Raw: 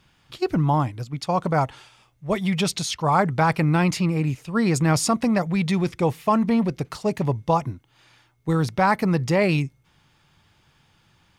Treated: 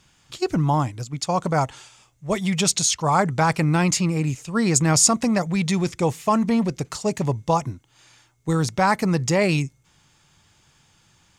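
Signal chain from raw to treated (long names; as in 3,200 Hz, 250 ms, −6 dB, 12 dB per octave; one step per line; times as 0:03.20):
parametric band 7,100 Hz +13 dB 0.79 octaves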